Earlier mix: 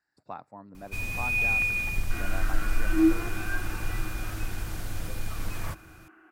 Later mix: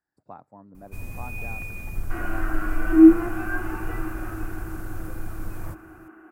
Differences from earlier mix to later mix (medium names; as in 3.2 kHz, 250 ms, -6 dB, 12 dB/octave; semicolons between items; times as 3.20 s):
second sound +11.0 dB; master: add peaking EQ 3.6 kHz -15 dB 2.4 oct